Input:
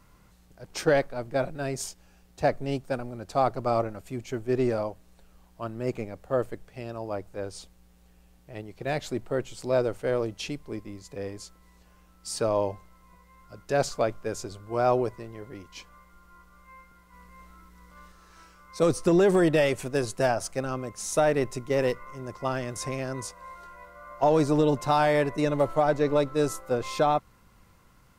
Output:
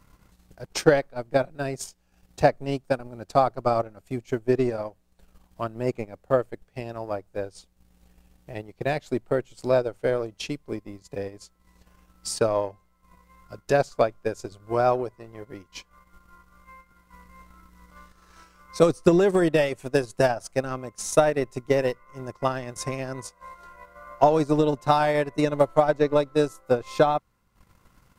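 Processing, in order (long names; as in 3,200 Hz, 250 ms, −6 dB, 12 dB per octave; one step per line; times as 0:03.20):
transient designer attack +7 dB, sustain −11 dB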